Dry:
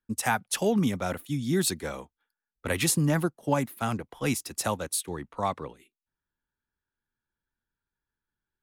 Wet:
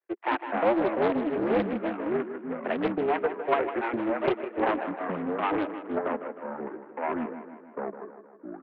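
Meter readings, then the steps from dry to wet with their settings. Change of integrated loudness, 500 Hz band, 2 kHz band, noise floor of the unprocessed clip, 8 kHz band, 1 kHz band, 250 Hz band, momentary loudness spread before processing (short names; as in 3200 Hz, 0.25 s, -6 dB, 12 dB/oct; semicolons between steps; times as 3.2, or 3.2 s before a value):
-0.5 dB, +6.0 dB, +0.5 dB, under -85 dBFS, under -40 dB, +4.0 dB, +1.0 dB, 12 LU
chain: switching dead time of 0.26 ms; reverb removal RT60 1.8 s; mistuned SSB +120 Hz 220–2400 Hz; echoes that change speed 0.186 s, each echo -4 st, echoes 2; feedback echo 0.156 s, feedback 55%, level -10.5 dB; Doppler distortion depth 0.41 ms; gain +3 dB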